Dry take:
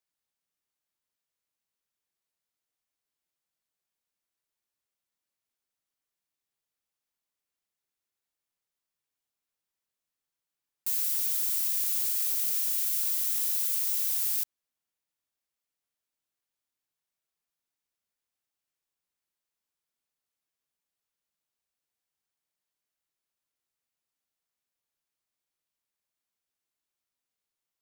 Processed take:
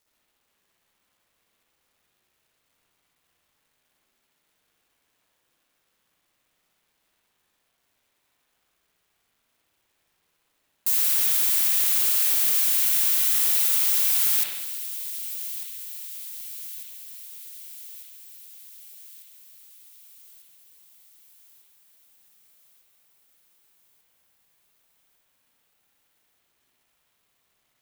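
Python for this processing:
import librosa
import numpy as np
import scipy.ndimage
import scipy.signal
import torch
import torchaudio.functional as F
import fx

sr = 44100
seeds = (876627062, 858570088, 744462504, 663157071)

y = fx.law_mismatch(x, sr, coded='mu')
y = fx.highpass(y, sr, hz=210.0, slope=6, at=(11.58, 13.81))
y = fx.echo_wet_highpass(y, sr, ms=1197, feedback_pct=60, hz=2300.0, wet_db=-13)
y = fx.rev_spring(y, sr, rt60_s=1.1, pass_ms=(58,), chirp_ms=25, drr_db=-5.5)
y = y * librosa.db_to_amplitude(6.0)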